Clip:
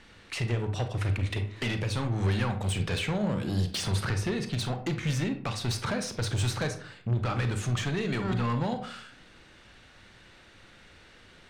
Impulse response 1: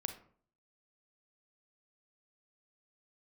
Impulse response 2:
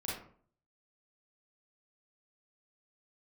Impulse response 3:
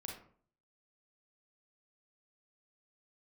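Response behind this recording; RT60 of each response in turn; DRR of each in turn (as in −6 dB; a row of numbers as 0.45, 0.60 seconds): 1; 0.50, 0.50, 0.50 seconds; 7.0, −6.5, −0.5 decibels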